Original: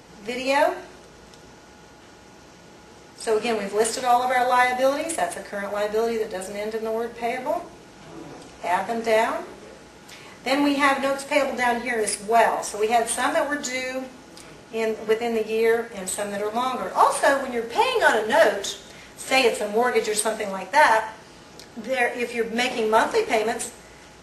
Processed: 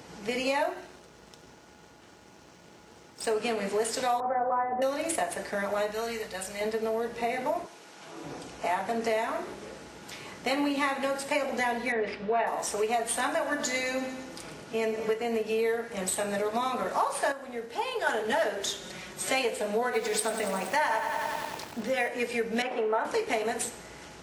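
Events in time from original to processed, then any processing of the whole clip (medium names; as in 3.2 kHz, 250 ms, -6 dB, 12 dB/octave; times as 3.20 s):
0.69–3.32 s: companding laws mixed up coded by A
4.20–4.82 s: inverse Chebyshev low-pass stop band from 7 kHz, stop band 80 dB
5.91–6.61 s: peaking EQ 350 Hz -12.5 dB 2 oct
7.65–8.23 s: high-pass 1 kHz -> 440 Hz 6 dB/octave
11.92–12.47 s: low-pass 3.4 kHz 24 dB/octave
13.29–15.22 s: feedback delay 112 ms, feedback 53%, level -12 dB
17.32–18.07 s: gain -9.5 dB
18.81–19.29 s: comb 5.4 ms
19.84–22.08 s: bit-crushed delay 94 ms, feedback 80%, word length 6-bit, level -10 dB
22.62–23.05 s: three-band isolator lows -16 dB, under 280 Hz, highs -19 dB, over 2.2 kHz
whole clip: high-pass 56 Hz; compression 4:1, threshold -26 dBFS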